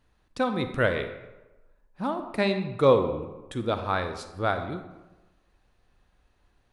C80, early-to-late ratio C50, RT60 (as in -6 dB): 10.5 dB, 8.5 dB, 1.1 s